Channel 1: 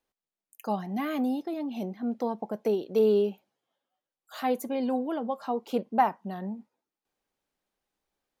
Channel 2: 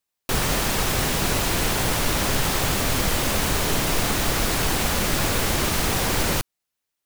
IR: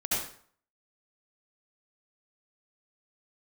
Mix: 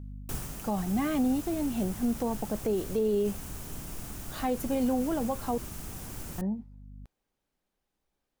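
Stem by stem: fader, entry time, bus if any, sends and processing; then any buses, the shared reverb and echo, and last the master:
-1.0 dB, 0.00 s, muted 5.58–6.38, no send, low shelf 220 Hz +9.5 dB
-5.5 dB, 0.00 s, no send, graphic EQ 500/1000/2000/4000 Hz -8/-5/-8/-10 dB; hum 50 Hz, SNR 11 dB; auto duck -10 dB, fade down 0.35 s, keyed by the first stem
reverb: off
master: limiter -20 dBFS, peak gain reduction 8 dB

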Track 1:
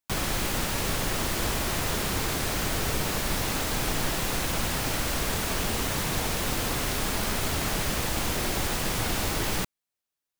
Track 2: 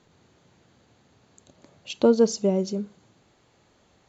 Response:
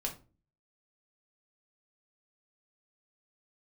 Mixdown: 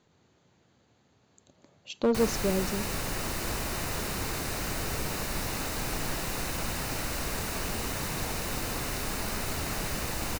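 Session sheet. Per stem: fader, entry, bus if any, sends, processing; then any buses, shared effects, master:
-4.5 dB, 2.05 s, no send, notch 3300 Hz, Q 7.7
-5.5 dB, 0.00 s, no send, one-sided clip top -16 dBFS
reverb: off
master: dry

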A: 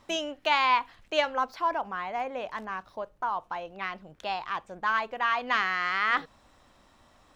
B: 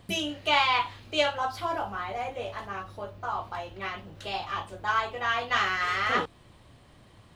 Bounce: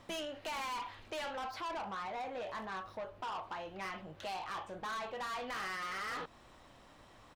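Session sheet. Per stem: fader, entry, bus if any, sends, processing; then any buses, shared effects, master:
-1.5 dB, 0.00 s, no send, limiter -18.5 dBFS, peak gain reduction 7 dB
-14.0 dB, 1 ms, polarity flipped, no send, overdrive pedal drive 20 dB, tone 1500 Hz, clips at -10.5 dBFS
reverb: off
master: soft clip -34 dBFS, distortion -7 dB; compressor 1.5:1, threshold -44 dBFS, peak gain reduction 3.5 dB

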